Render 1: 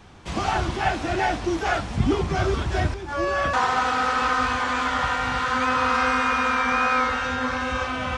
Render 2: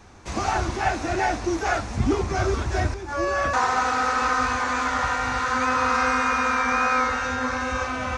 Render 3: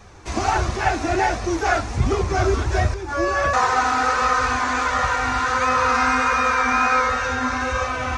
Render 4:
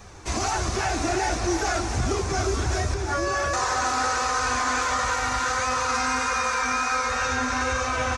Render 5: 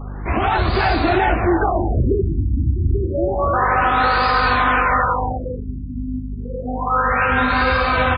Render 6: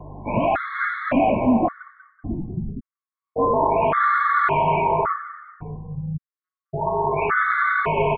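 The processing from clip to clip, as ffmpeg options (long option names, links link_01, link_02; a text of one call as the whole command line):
ffmpeg -i in.wav -af "equalizer=frequency=160:width_type=o:width=0.33:gain=-10,equalizer=frequency=3150:width_type=o:width=0.33:gain=-8,equalizer=frequency=6300:width_type=o:width=0.33:gain=6" out.wav
ffmpeg -i in.wav -af "flanger=delay=1.6:depth=1.4:regen=-38:speed=1.4:shape=sinusoidal,volume=7dB" out.wav
ffmpeg -i in.wav -filter_complex "[0:a]acrossover=split=5000[link_01][link_02];[link_01]alimiter=limit=-17.5dB:level=0:latency=1:release=81[link_03];[link_02]acontrast=37[link_04];[link_03][link_04]amix=inputs=2:normalize=0,aecho=1:1:316|632|948|1264|1580|1896|2212:0.335|0.198|0.117|0.0688|0.0406|0.0239|0.0141" out.wav
ffmpeg -i in.wav -af "aeval=exprs='val(0)+0.0158*(sin(2*PI*50*n/s)+sin(2*PI*2*50*n/s)/2+sin(2*PI*3*50*n/s)/3+sin(2*PI*4*50*n/s)/4+sin(2*PI*5*50*n/s)/5)':channel_layout=same,afftfilt=real='re*lt(b*sr/1024,320*pow(5000/320,0.5+0.5*sin(2*PI*0.29*pts/sr)))':imag='im*lt(b*sr/1024,320*pow(5000/320,0.5+0.5*sin(2*PI*0.29*pts/sr)))':win_size=1024:overlap=0.75,volume=8.5dB" out.wav
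ffmpeg -i in.wav -filter_complex "[0:a]highpass=frequency=150:width_type=q:width=0.5412,highpass=frequency=150:width_type=q:width=1.307,lowpass=frequency=2700:width_type=q:width=0.5176,lowpass=frequency=2700:width_type=q:width=0.7071,lowpass=frequency=2700:width_type=q:width=1.932,afreqshift=-100,asplit=5[link_01][link_02][link_03][link_04][link_05];[link_02]adelay=191,afreqshift=33,volume=-14dB[link_06];[link_03]adelay=382,afreqshift=66,volume=-22.2dB[link_07];[link_04]adelay=573,afreqshift=99,volume=-30.4dB[link_08];[link_05]adelay=764,afreqshift=132,volume=-38.5dB[link_09];[link_01][link_06][link_07][link_08][link_09]amix=inputs=5:normalize=0,afftfilt=real='re*gt(sin(2*PI*0.89*pts/sr)*(1-2*mod(floor(b*sr/1024/1100),2)),0)':imag='im*gt(sin(2*PI*0.89*pts/sr)*(1-2*mod(floor(b*sr/1024/1100),2)),0)':win_size=1024:overlap=0.75" out.wav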